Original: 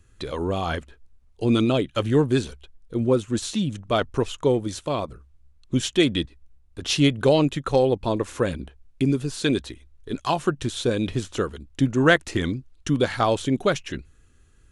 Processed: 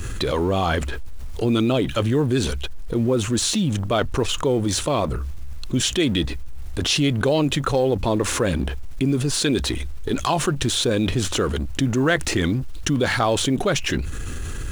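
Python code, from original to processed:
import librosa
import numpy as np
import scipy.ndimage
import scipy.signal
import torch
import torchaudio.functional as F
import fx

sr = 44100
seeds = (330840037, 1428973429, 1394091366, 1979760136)

y = fx.law_mismatch(x, sr, coded='mu')
y = fx.env_flatten(y, sr, amount_pct=70)
y = F.gain(torch.from_numpy(y), -4.0).numpy()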